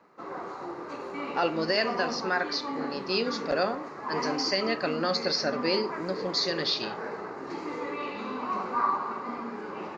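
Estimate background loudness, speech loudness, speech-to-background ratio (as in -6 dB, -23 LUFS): -35.0 LUFS, -29.0 LUFS, 6.0 dB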